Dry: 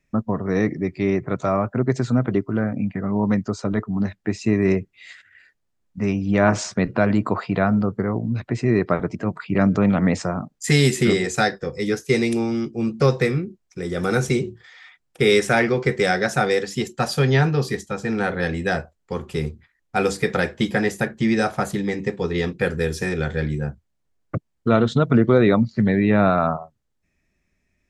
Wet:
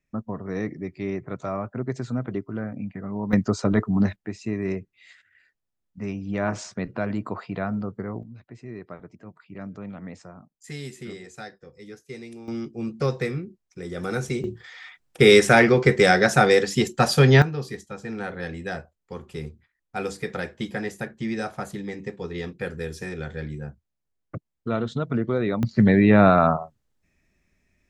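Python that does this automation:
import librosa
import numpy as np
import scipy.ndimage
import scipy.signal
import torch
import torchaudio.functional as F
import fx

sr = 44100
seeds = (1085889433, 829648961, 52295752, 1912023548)

y = fx.gain(x, sr, db=fx.steps((0.0, -8.5), (3.33, 2.0), (4.16, -9.0), (8.23, -19.5), (12.48, -7.0), (14.44, 3.0), (17.42, -9.0), (25.63, 2.0)))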